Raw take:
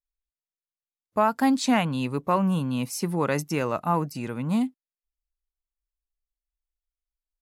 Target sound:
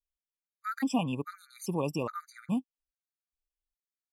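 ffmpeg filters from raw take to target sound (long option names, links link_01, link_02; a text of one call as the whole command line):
ffmpeg -i in.wav -af "atempo=1.8,afftfilt=real='re*gt(sin(2*PI*1.2*pts/sr)*(1-2*mod(floor(b*sr/1024/1200),2)),0)':imag='im*gt(sin(2*PI*1.2*pts/sr)*(1-2*mod(floor(b*sr/1024/1200),2)),0)':win_size=1024:overlap=0.75,volume=-5dB" out.wav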